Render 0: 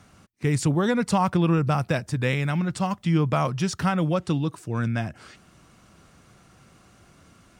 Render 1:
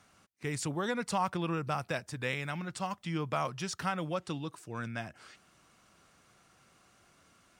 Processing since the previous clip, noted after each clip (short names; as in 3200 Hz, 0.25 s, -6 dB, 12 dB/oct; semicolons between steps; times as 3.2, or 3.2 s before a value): low shelf 340 Hz -11 dB; gain -6 dB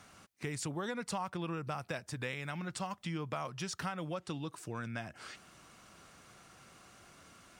compressor 3:1, threshold -45 dBFS, peak gain reduction 14.5 dB; gain +6 dB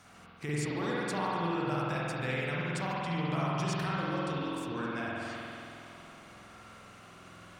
spring tank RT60 2.9 s, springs 47 ms, chirp 25 ms, DRR -7 dB; gain -1 dB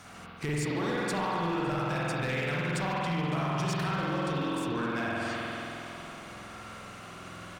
compressor 2:1, threshold -37 dBFS, peak gain reduction 6 dB; hard clip -33 dBFS, distortion -16 dB; echo 0.559 s -22.5 dB; gain +7.5 dB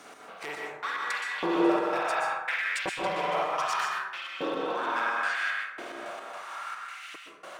LFO high-pass saw up 0.7 Hz 340–2800 Hz; step gate "x.xx..x.x.xx" 109 bpm -60 dB; plate-style reverb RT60 1 s, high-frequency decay 0.4×, pre-delay 0.11 s, DRR -1 dB